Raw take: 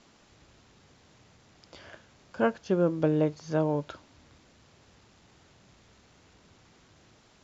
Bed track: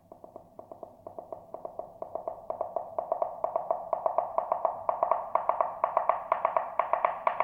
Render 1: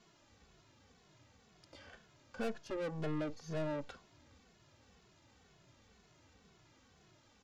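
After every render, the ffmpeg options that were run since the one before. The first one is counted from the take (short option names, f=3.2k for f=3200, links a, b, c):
-filter_complex "[0:a]aeval=exprs='(tanh(44.7*val(0)+0.7)-tanh(0.7))/44.7':c=same,asplit=2[a][b];[b]adelay=2.3,afreqshift=-2[c];[a][c]amix=inputs=2:normalize=1"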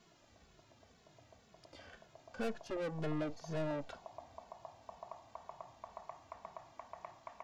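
-filter_complex "[1:a]volume=-23.5dB[a];[0:a][a]amix=inputs=2:normalize=0"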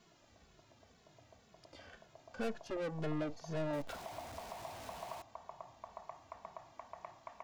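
-filter_complex "[0:a]asettb=1/sr,asplit=3[a][b][c];[a]atrim=end=3.734[d];[b]atrim=start=3.73:end=5.22,asetpts=PTS-STARTPTS,afade=t=in:d=0.004:c=qsin,afade=t=out:st=1.486:d=0.004:c=qsin,aeval=exprs='val(0)+0.5*0.00562*sgn(val(0))':c=same[e];[c]atrim=start=5.216[f];[d][e]acrossfade=d=0.004:c1=hsin:c2=qsin[g];[g][f]acrossfade=d=0.004:c1=qsin:c2=hsin"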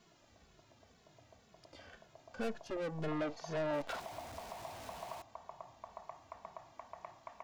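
-filter_complex "[0:a]asettb=1/sr,asplit=3[a][b][c];[a]atrim=end=3.084[d];[b]atrim=start=3.08:end=4,asetpts=PTS-STARTPTS,afade=t=in:d=0.004:c=qsin,afade=t=out:st=0.916:d=0.004:c=qsin,asplit=2[e][f];[f]highpass=f=720:p=1,volume=13dB,asoftclip=type=tanh:threshold=-27dB[g];[e][g]amix=inputs=2:normalize=0,lowpass=f=3.6k:p=1,volume=-6dB[h];[c]atrim=start=3.996[i];[d][h]acrossfade=d=0.004:c1=hsin:c2=qsin[j];[j][i]acrossfade=d=0.004:c1=qsin:c2=hsin"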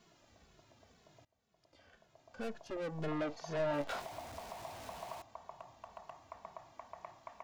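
-filter_complex "[0:a]asettb=1/sr,asplit=3[a][b][c];[a]atrim=end=3.574[d];[b]atrim=start=3.57:end=4.07,asetpts=PTS-STARTPTS,afade=t=in:d=0.004:c=qsin,afade=t=out:st=0.496:d=0.004:c=qsin,asplit=2[e][f];[f]adelay=21,volume=-5dB[g];[e][g]amix=inputs=2:normalize=0,atrim=end_sample=22050[h];[c]atrim=start=4.066[i];[d][h]acrossfade=d=0.004:c1=hsin:c2=qsin[j];[j][i]acrossfade=d=0.004:c1=qsin:c2=hsin,asettb=1/sr,asplit=3[k][l][m];[k]atrim=end=5.554[n];[l]atrim=start=5.55:end=6.23,asetpts=PTS-STARTPTS,afade=t=in:d=0.004:c=qsin,afade=t=out:st=0.676:d=0.004:c=qsin,asoftclip=type=hard:threshold=-39.5dB[o];[m]atrim=start=6.226[p];[n][o]acrossfade=d=0.004:c1=hsin:c2=qsin[q];[q][p]acrossfade=d=0.004:c1=qsin:c2=hsin,asplit=2[r][s];[r]atrim=end=1.25,asetpts=PTS-STARTPTS,afade=t=out:st=1.246:d=0.004:c=hsin:silence=0.0630957[t];[s]atrim=start=1.25,asetpts=PTS-STARTPTS,afade=t=in:d=1.79:silence=0.0630957[u];[t][u]concat=n=2:v=0:a=1"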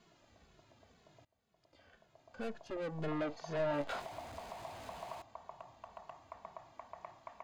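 -af "highshelf=f=9.2k:g=-9,bandreject=f=5.6k:w=12"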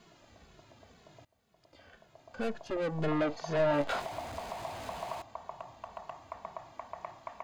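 -af "volume=7dB"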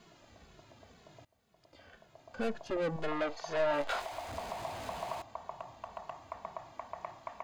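-filter_complex "[0:a]asettb=1/sr,asplit=3[a][b][c];[a]atrim=end=2.964[d];[b]atrim=start=2.96:end=4.29,asetpts=PTS-STARTPTS,afade=t=in:d=0.004:c=qsin,afade=t=out:st=1.326:d=0.004:c=qsin,equalizer=f=170:w=0.71:g=-14[e];[c]atrim=start=4.286[f];[d][e]acrossfade=d=0.004:c1=hsin:c2=qsin[g];[g][f]acrossfade=d=0.004:c1=qsin:c2=hsin"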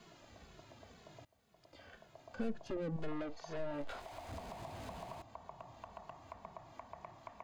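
-filter_complex "[0:a]acrossover=split=350[a][b];[b]acompressor=threshold=-50dB:ratio=3[c];[a][c]amix=inputs=2:normalize=0"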